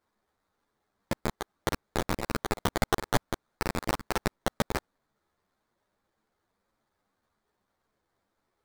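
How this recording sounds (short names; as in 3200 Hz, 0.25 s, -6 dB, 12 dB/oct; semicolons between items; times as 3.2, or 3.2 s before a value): aliases and images of a low sample rate 2800 Hz, jitter 20%; a shimmering, thickened sound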